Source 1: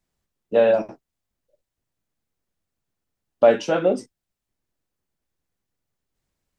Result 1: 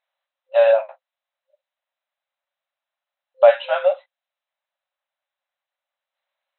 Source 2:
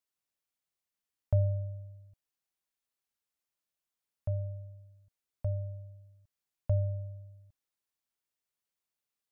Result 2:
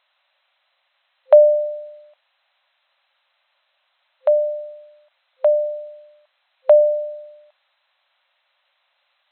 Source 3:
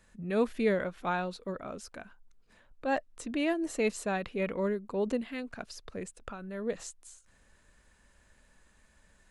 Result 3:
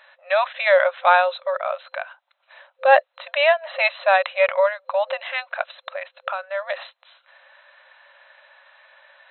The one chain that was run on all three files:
brick-wall band-pass 520–4,100 Hz
normalise the peak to −1.5 dBFS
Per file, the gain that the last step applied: +3.0, +28.5, +17.5 decibels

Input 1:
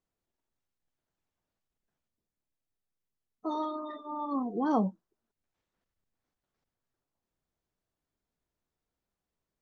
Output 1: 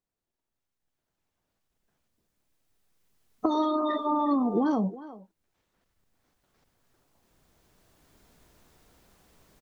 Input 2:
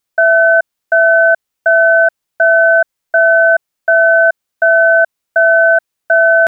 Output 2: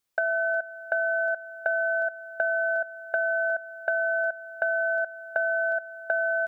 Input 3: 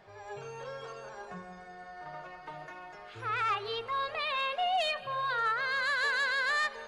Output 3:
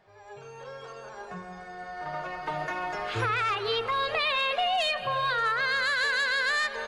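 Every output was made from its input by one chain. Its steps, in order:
camcorder AGC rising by 6.7 dB per second
dynamic equaliser 960 Hz, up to −6 dB, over −23 dBFS, Q 0.86
downward compressor, threshold −18 dBFS
far-end echo of a speakerphone 360 ms, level −15 dB
loudness normalisation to −27 LKFS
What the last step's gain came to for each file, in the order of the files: −3.0, −5.5, −5.0 decibels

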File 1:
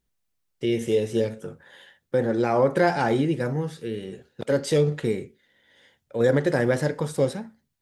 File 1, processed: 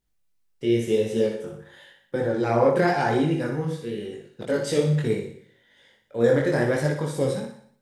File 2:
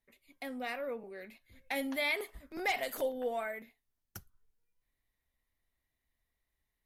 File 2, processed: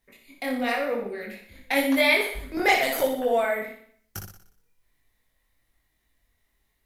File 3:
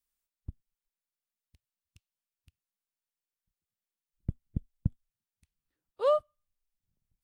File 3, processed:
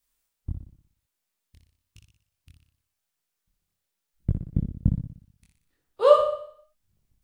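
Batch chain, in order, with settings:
flutter between parallel walls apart 10.3 metres, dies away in 0.6 s
multi-voice chorus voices 2, 0.94 Hz, delay 22 ms, depth 3.7 ms
loudness normalisation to −24 LKFS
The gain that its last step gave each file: +2.0, +14.5, +12.0 decibels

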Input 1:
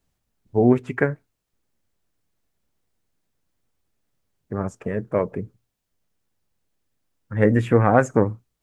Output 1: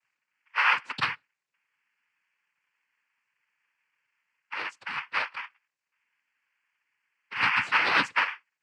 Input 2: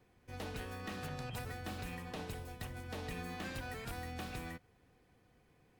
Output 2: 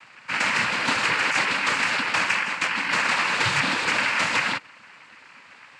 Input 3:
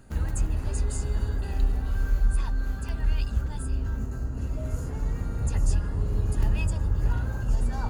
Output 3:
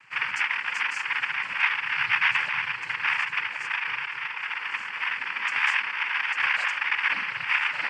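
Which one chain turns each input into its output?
ring modulation 1,700 Hz
cochlear-implant simulation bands 8
normalise the peak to −9 dBFS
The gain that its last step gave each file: −4.0, +23.5, +0.5 decibels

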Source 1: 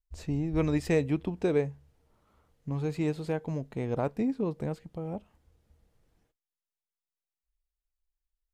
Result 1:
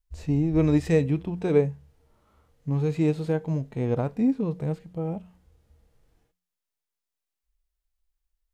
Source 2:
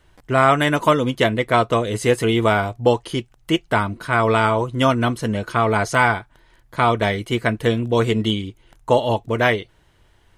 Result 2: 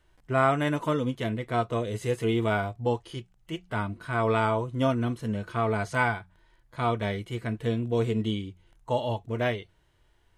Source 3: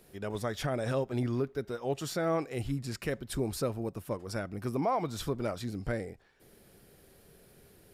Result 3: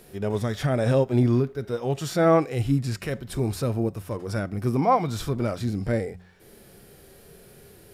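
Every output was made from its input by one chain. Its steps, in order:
hum removal 90.33 Hz, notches 2
harmonic and percussive parts rebalanced percussive −11 dB
normalise the peak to −9 dBFS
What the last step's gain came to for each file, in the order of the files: +7.5, −6.5, +12.0 decibels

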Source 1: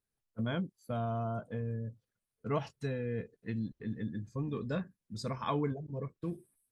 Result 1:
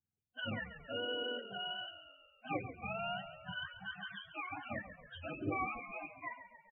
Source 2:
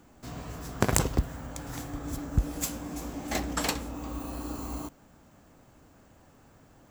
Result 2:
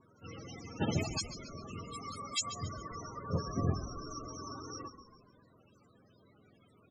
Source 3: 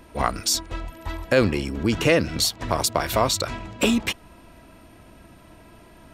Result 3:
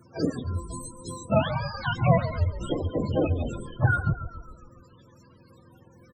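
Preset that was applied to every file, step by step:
frequency axis turned over on the octave scale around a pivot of 580 Hz
echo with shifted repeats 138 ms, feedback 55%, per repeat −35 Hz, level −11.5 dB
spectral peaks only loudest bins 32
level −2.5 dB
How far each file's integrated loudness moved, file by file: −4.0, −6.0, −4.5 LU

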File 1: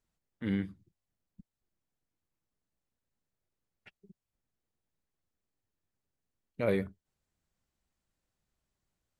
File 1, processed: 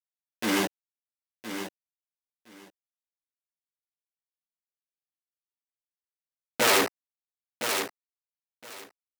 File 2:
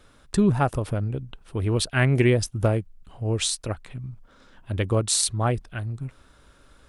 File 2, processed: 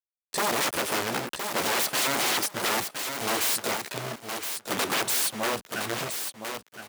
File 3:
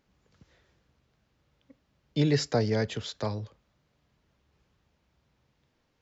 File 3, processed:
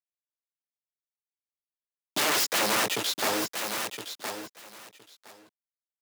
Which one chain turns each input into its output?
high-shelf EQ 5,400 Hz +3 dB
bit reduction 6 bits
multi-voice chorus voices 6, 0.81 Hz, delay 15 ms, depth 3 ms
harmonic generator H 3 −25 dB, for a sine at −7 dBFS
automatic gain control gain up to 14 dB
wrap-around overflow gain 17 dB
on a send: repeating echo 1,015 ms, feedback 16%, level −11 dB
on the sum: gain into a clipping stage and back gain 24.5 dB
high-pass filter 280 Hz 12 dB per octave
loudness normalisation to −27 LKFS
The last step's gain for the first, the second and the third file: +6.5, +1.0, +2.0 decibels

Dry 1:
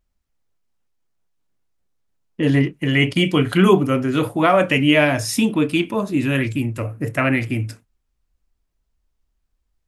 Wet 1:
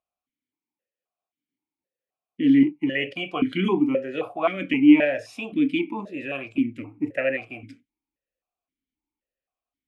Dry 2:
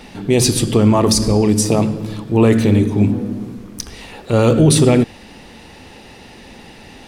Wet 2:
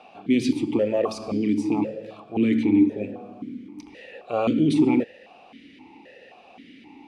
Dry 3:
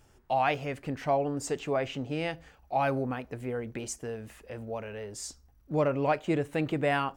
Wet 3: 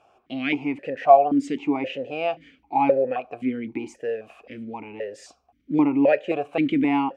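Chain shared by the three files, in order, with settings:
formant filter that steps through the vowels 3.8 Hz
loudness normalisation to −23 LKFS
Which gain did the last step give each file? +4.5, +3.5, +18.0 decibels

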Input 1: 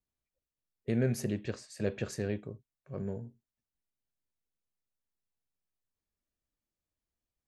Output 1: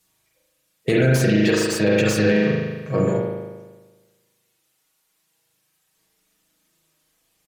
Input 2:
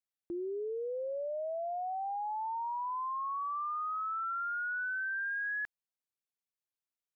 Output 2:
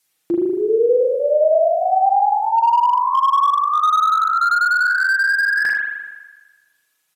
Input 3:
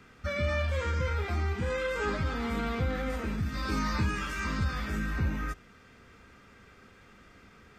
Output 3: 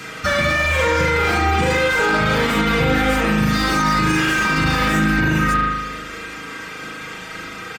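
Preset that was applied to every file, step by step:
high-shelf EQ 2,900 Hz +10.5 dB
flanger 0.94 Hz, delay 8.2 ms, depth 6.1 ms, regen +84%
high-pass filter 170 Hz 6 dB per octave
comb filter 6.3 ms, depth 60%
reverb reduction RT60 0.67 s
in parallel at −2.5 dB: downward compressor 6 to 1, threshold −45 dBFS
on the sum: spring reverb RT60 1.3 s, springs 38 ms, chirp 35 ms, DRR −3 dB
downsampling to 32,000 Hz
boost into a limiter +26 dB
slew-rate limiting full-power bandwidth 700 Hz
level −7.5 dB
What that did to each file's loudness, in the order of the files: +16.0, +19.5, +14.5 LU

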